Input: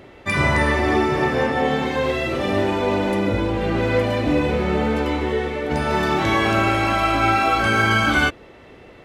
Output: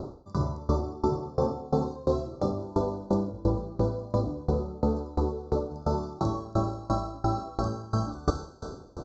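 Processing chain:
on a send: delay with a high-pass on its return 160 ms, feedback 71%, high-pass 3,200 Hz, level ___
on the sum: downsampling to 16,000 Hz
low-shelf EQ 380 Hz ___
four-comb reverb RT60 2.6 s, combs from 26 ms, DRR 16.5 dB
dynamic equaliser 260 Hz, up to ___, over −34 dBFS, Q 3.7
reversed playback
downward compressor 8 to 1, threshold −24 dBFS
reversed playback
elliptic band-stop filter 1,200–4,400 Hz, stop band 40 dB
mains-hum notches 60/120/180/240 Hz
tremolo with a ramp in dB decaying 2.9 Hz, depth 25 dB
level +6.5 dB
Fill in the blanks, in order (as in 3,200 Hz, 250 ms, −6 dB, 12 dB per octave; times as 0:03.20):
−15.5 dB, +8.5 dB, −4 dB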